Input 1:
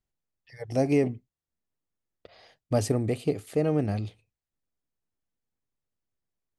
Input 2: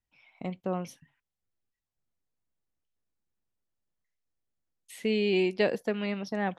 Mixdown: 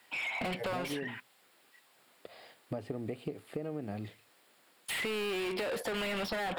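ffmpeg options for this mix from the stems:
ffmpeg -i stem1.wav -i stem2.wav -filter_complex "[0:a]acrossover=split=3500[link_01][link_02];[link_02]acompressor=threshold=-59dB:ratio=4:attack=1:release=60[link_03];[link_01][link_03]amix=inputs=2:normalize=0,highpass=160,acompressor=threshold=-37dB:ratio=2.5,volume=1.5dB[link_04];[1:a]highpass=220,acrossover=split=900|3600[link_05][link_06][link_07];[link_05]acompressor=threshold=-36dB:ratio=4[link_08];[link_06]acompressor=threshold=-45dB:ratio=4[link_09];[link_07]acompressor=threshold=-57dB:ratio=4[link_10];[link_08][link_09][link_10]amix=inputs=3:normalize=0,asplit=2[link_11][link_12];[link_12]highpass=frequency=720:poles=1,volume=38dB,asoftclip=type=tanh:threshold=-25dB[link_13];[link_11][link_13]amix=inputs=2:normalize=0,lowpass=frequency=4800:poles=1,volume=-6dB,volume=2dB[link_14];[link_04][link_14]amix=inputs=2:normalize=0,equalizer=frequency=6100:width=4.3:gain=-13,acompressor=threshold=-33dB:ratio=6" out.wav

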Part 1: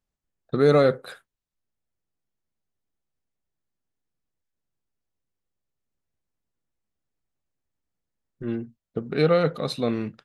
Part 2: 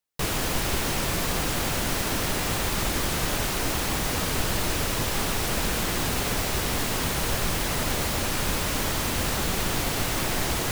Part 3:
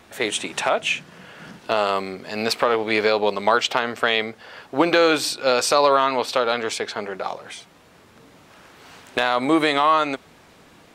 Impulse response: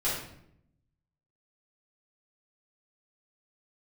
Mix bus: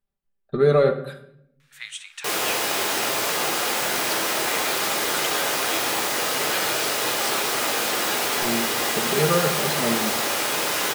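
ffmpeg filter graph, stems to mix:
-filter_complex "[0:a]equalizer=frequency=6300:width=1.4:gain=-9,aecho=1:1:5.1:0.7,volume=-3.5dB,asplit=2[link_01][link_02];[link_02]volume=-14.5dB[link_03];[1:a]highpass=420,adelay=2050,volume=-0.5dB,asplit=2[link_04][link_05];[link_05]volume=-5.5dB[link_06];[2:a]highpass=frequency=1400:width=0.5412,highpass=frequency=1400:width=1.3066,adelay=1600,volume=-11dB,asplit=2[link_07][link_08];[link_08]volume=-18dB[link_09];[3:a]atrim=start_sample=2205[link_10];[link_03][link_06][link_09]amix=inputs=3:normalize=0[link_11];[link_11][link_10]afir=irnorm=-1:irlink=0[link_12];[link_01][link_04][link_07][link_12]amix=inputs=4:normalize=0"

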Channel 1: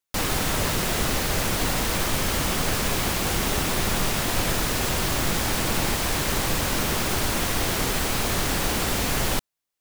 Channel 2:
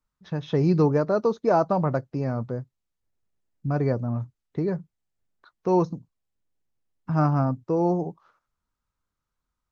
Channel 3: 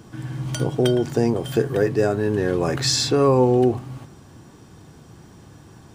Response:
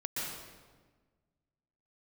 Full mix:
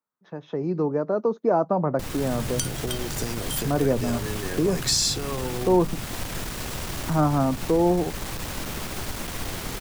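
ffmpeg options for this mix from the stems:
-filter_complex "[0:a]aeval=exprs='clip(val(0),-1,0.0562)':channel_layout=same,adelay=1850,volume=-4.5dB[link_01];[1:a]highpass=310,equalizer=frequency=4500:width=0.5:gain=-13,dynaudnorm=framelen=130:gausssize=17:maxgain=12dB,volume=1dB[link_02];[2:a]acompressor=threshold=-21dB:ratio=6,crystalizer=i=9.5:c=0,adelay=2050,volume=-5.5dB[link_03];[link_01][link_02][link_03]amix=inputs=3:normalize=0,acrossover=split=230[link_04][link_05];[link_05]acompressor=threshold=-36dB:ratio=1.5[link_06];[link_04][link_06]amix=inputs=2:normalize=0"

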